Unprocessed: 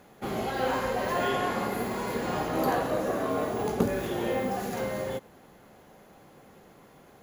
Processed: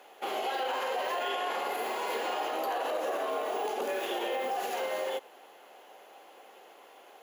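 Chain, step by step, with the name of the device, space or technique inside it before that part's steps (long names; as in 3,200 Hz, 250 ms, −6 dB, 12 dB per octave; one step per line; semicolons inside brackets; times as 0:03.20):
laptop speaker (high-pass filter 380 Hz 24 dB per octave; parametric band 790 Hz +5 dB 0.58 octaves; parametric band 2,900 Hz +9.5 dB 0.51 octaves; brickwall limiter −24 dBFS, peak gain reduction 10.5 dB)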